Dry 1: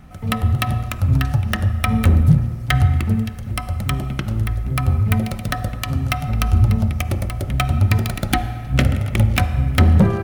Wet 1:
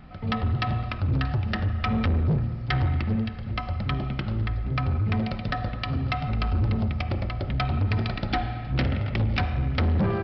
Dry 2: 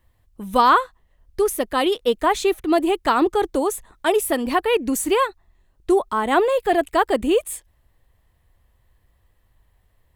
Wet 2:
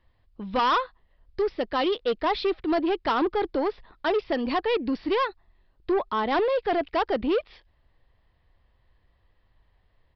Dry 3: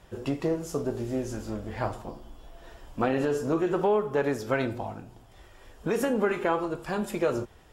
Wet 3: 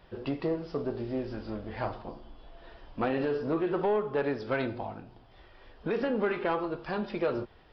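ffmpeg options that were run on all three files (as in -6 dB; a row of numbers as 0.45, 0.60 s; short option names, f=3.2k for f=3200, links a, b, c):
-af "equalizer=f=76:w=0.56:g=-3.5,aresample=11025,asoftclip=type=tanh:threshold=-17.5dB,aresample=44100,volume=-1.5dB"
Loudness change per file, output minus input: -7.5, -6.0, -3.0 LU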